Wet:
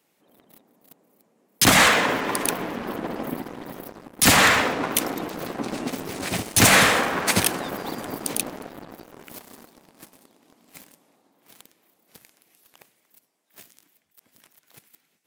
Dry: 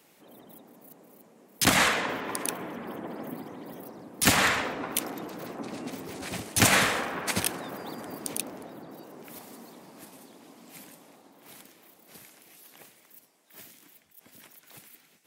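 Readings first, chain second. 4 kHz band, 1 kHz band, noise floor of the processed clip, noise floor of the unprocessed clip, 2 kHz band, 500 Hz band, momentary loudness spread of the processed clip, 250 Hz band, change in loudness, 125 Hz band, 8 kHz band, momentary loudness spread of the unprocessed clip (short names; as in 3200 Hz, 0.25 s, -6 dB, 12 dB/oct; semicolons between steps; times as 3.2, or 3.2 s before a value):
+7.0 dB, +7.5 dB, -69 dBFS, -61 dBFS, +7.0 dB, +7.5 dB, 18 LU, +6.5 dB, +7.0 dB, +6.0 dB, +6.5 dB, 24 LU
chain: sample leveller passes 3; gain -2.5 dB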